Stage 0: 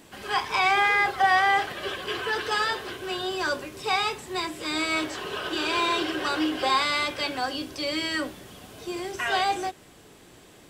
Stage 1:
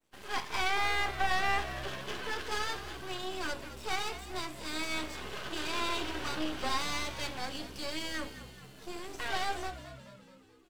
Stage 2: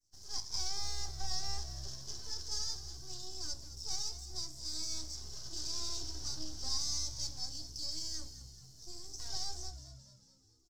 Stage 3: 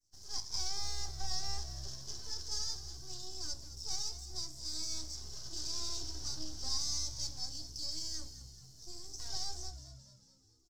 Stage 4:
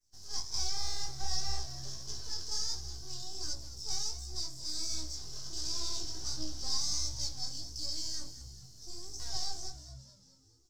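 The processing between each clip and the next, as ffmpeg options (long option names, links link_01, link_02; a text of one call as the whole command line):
ffmpeg -i in.wav -filter_complex "[0:a]agate=range=-33dB:threshold=-41dB:ratio=3:detection=peak,aeval=exprs='max(val(0),0)':channel_layout=same,asplit=7[link_01][link_02][link_03][link_04][link_05][link_06][link_07];[link_02]adelay=215,afreqshift=-66,volume=-13dB[link_08];[link_03]adelay=430,afreqshift=-132,volume=-17.9dB[link_09];[link_04]adelay=645,afreqshift=-198,volume=-22.8dB[link_10];[link_05]adelay=860,afreqshift=-264,volume=-27.6dB[link_11];[link_06]adelay=1075,afreqshift=-330,volume=-32.5dB[link_12];[link_07]adelay=1290,afreqshift=-396,volume=-37.4dB[link_13];[link_01][link_08][link_09][link_10][link_11][link_12][link_13]amix=inputs=7:normalize=0,volume=-5dB" out.wav
ffmpeg -i in.wav -af "firequalizer=gain_entry='entry(110,0);entry(190,-15);entry(340,-14);entry(490,-22);entry(710,-16);entry(1200,-22);entry(2600,-28);entry(5300,12);entry(9200,-7)':delay=0.05:min_phase=1" out.wav
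ffmpeg -i in.wav -af anull out.wav
ffmpeg -i in.wav -af "flanger=delay=16:depth=7.6:speed=1.4,volume=5.5dB" out.wav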